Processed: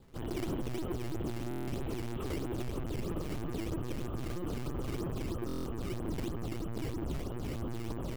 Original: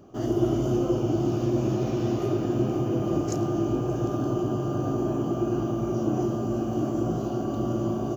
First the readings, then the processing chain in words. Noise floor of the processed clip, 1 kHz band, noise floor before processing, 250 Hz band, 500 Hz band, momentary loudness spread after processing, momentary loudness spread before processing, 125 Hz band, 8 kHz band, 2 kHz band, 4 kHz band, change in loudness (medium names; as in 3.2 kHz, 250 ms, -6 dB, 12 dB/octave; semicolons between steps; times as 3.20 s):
-38 dBFS, -11.5 dB, -30 dBFS, -13.0 dB, -13.0 dB, 2 LU, 3 LU, -10.0 dB, no reading, -1.5 dB, -3.0 dB, -11.5 dB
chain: peaking EQ 530 Hz -8 dB 2.9 oct; LPC vocoder at 8 kHz pitch kept; decimation with a swept rate 10×, swing 160% 3.1 Hz; hard clipper -28 dBFS, distortion -10 dB; buffer glitch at 1.49/5.47 s, samples 1024, times 7; trim -2.5 dB